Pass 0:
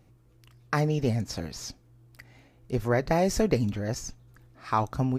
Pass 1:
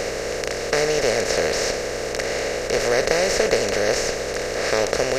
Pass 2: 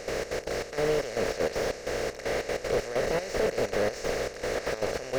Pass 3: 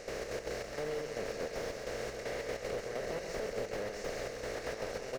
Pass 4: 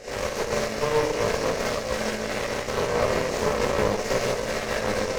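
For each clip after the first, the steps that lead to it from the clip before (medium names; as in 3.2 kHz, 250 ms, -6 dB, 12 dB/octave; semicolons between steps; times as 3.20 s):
spectral levelling over time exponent 0.2; graphic EQ 125/250/500/1000/2000/4000/8000 Hz -9/-7/+12/-11/+10/+11/+5 dB; trim -5 dB
peak limiter -11 dBFS, peak gain reduction 9 dB; trance gate ".xx.x.xx..xxx." 193 bpm -12 dB; slew-rate limiter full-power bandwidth 81 Hz; trim -3 dB
compression, threshold -27 dBFS, peak gain reduction 6 dB; on a send: loudspeakers at several distances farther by 46 m -6 dB, 71 m -10 dB; on the sum: trim -7.5 dB
chorus voices 2, 0.69 Hz, delay 18 ms, depth 1.2 ms; Schroeder reverb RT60 0.33 s, combs from 29 ms, DRR -7 dB; Chebyshev shaper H 4 -10 dB, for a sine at -19.5 dBFS; trim +7 dB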